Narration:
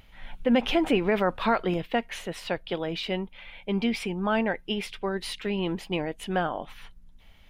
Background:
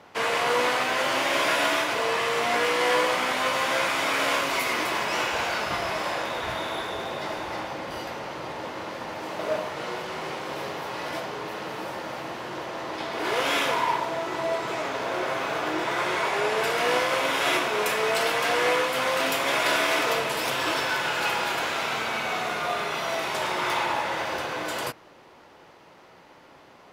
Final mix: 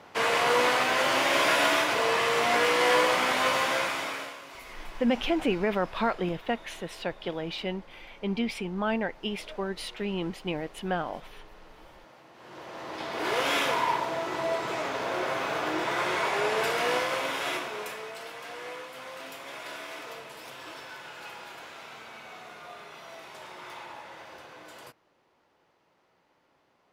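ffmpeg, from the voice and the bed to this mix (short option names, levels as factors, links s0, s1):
-filter_complex "[0:a]adelay=4550,volume=0.708[s0];[1:a]volume=7.5,afade=t=out:st=3.51:d=0.83:silence=0.105925,afade=t=in:st=12.33:d=0.9:silence=0.133352,afade=t=out:st=16.62:d=1.51:silence=0.177828[s1];[s0][s1]amix=inputs=2:normalize=0"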